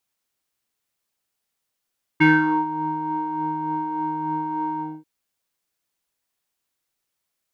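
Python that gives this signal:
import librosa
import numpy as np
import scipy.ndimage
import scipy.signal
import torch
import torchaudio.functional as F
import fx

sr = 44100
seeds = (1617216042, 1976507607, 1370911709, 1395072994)

y = fx.sub_patch_tremolo(sr, seeds[0], note=63, wave='square', wave2='triangle', interval_st=-12, detune_cents=16, level2_db=-7.0, sub_db=-15.0, noise_db=-15.0, kind='lowpass', cutoff_hz=540.0, q=4.8, env_oct=2.0, env_decay_s=0.4, env_sustain_pct=40, attack_ms=16.0, decay_s=0.44, sustain_db=-15, release_s=0.24, note_s=2.6, lfo_hz=3.4, tremolo_db=3.0)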